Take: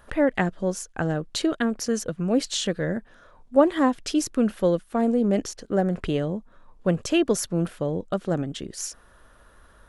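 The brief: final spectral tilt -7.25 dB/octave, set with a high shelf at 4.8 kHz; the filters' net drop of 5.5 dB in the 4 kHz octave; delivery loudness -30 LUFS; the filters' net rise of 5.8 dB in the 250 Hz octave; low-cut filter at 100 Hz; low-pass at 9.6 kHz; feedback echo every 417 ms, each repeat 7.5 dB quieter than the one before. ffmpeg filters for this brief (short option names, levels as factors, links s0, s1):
-af "highpass=100,lowpass=9600,equalizer=f=250:t=o:g=7.5,equalizer=f=4000:t=o:g=-5,highshelf=f=4800:g=-4.5,aecho=1:1:417|834|1251|1668|2085:0.422|0.177|0.0744|0.0312|0.0131,volume=0.335"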